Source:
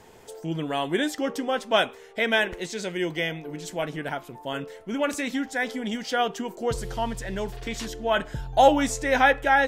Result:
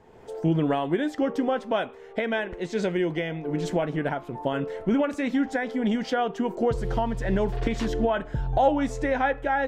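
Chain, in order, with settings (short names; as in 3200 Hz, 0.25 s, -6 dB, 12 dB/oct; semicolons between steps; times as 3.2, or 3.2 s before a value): recorder AGC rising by 29 dB/s; LPF 1100 Hz 6 dB/oct; gain -3 dB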